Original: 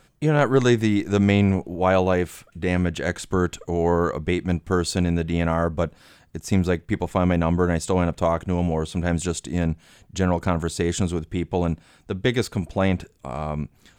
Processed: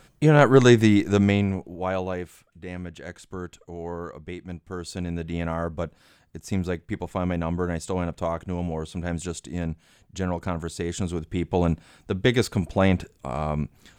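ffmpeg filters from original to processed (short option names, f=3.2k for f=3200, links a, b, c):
-af "volume=17dB,afade=t=out:st=0.9:d=0.58:silence=0.354813,afade=t=out:st=1.48:d=1.16:silence=0.446684,afade=t=in:st=4.72:d=0.6:silence=0.446684,afade=t=in:st=10.94:d=0.72:silence=0.446684"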